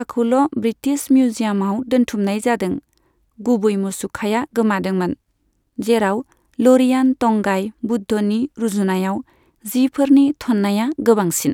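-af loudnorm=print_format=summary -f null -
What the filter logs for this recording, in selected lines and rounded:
Input Integrated:    -18.0 LUFS
Input True Peak:      -1.3 dBTP
Input LRA:             2.7 LU
Input Threshold:     -28.5 LUFS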